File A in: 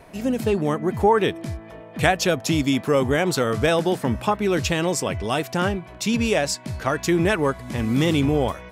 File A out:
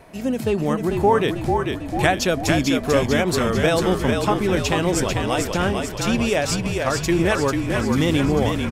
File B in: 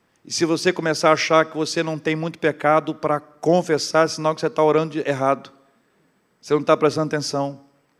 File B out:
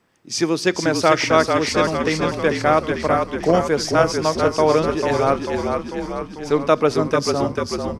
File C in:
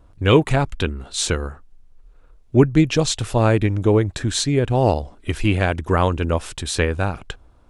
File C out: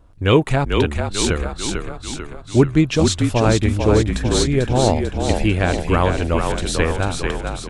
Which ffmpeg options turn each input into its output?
-filter_complex "[0:a]asplit=9[s0][s1][s2][s3][s4][s5][s6][s7][s8];[s1]adelay=444,afreqshift=-41,volume=0.596[s9];[s2]adelay=888,afreqshift=-82,volume=0.351[s10];[s3]adelay=1332,afreqshift=-123,volume=0.207[s11];[s4]adelay=1776,afreqshift=-164,volume=0.123[s12];[s5]adelay=2220,afreqshift=-205,volume=0.0724[s13];[s6]adelay=2664,afreqshift=-246,volume=0.0427[s14];[s7]adelay=3108,afreqshift=-287,volume=0.0251[s15];[s8]adelay=3552,afreqshift=-328,volume=0.0148[s16];[s0][s9][s10][s11][s12][s13][s14][s15][s16]amix=inputs=9:normalize=0"

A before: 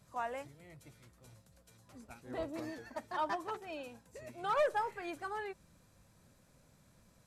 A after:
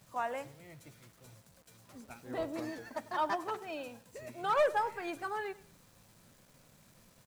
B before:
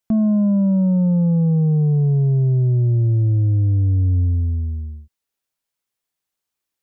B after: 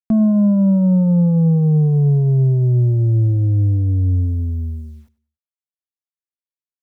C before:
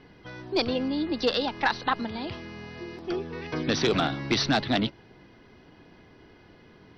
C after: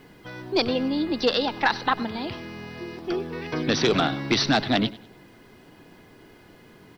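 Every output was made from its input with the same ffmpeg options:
-filter_complex "[0:a]equalizer=f=61:w=2:g=-10.5,acrusher=bits=10:mix=0:aa=0.000001,asplit=2[s0][s1];[s1]aecho=0:1:97|194|291:0.106|0.0339|0.0108[s2];[s0][s2]amix=inputs=2:normalize=0,volume=1.41"

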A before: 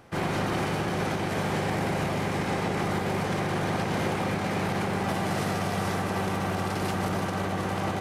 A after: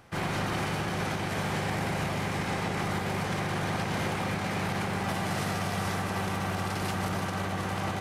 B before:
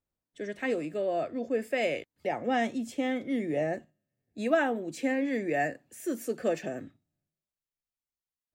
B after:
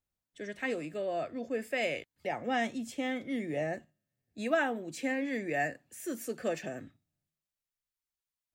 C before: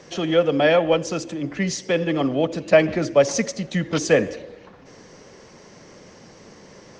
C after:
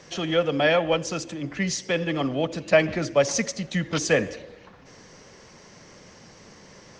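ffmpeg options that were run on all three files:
-af "equalizer=f=380:t=o:w=2.2:g=-5.5"

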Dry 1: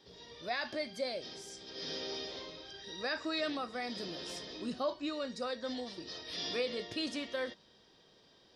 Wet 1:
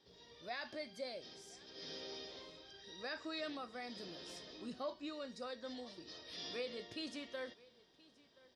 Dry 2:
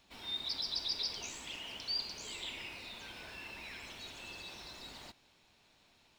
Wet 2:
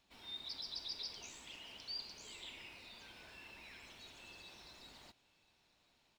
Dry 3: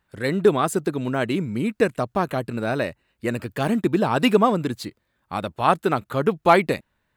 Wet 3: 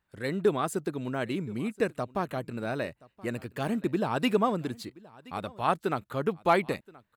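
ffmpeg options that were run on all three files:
-af "aecho=1:1:1025:0.075,volume=0.398"

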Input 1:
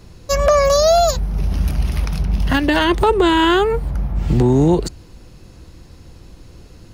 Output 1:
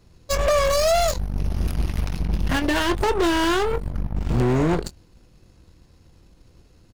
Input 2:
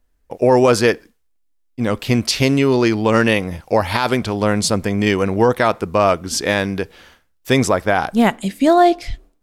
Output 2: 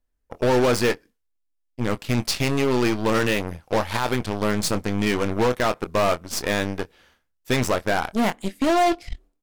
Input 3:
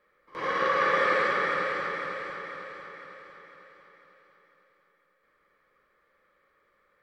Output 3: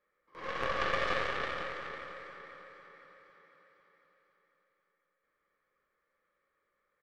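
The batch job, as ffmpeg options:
-filter_complex "[0:a]aeval=exprs='0.708*(cos(1*acos(clip(val(0)/0.708,-1,1)))-cos(1*PI/2))+0.0794*(cos(3*acos(clip(val(0)/0.708,-1,1)))-cos(3*PI/2))+0.0126*(cos(5*acos(clip(val(0)/0.708,-1,1)))-cos(5*PI/2))+0.0501*(cos(7*acos(clip(val(0)/0.708,-1,1)))-cos(7*PI/2))+0.0398*(cos(8*acos(clip(val(0)/0.708,-1,1)))-cos(8*PI/2))':c=same,asplit=2[s0][s1];[s1]adelay=24,volume=0.2[s2];[s0][s2]amix=inputs=2:normalize=0,volume=5.62,asoftclip=hard,volume=0.178"

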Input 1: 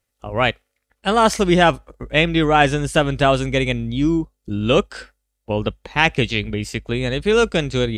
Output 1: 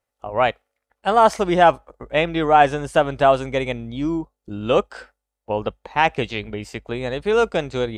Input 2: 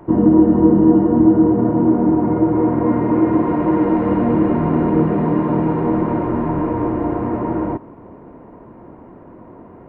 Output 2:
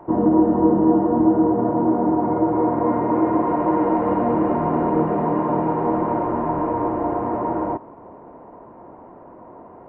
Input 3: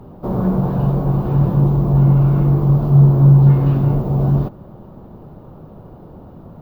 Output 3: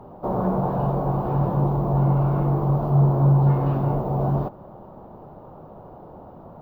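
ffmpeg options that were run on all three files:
-af "equalizer=f=790:t=o:w=1.9:g=12.5,volume=0.355"

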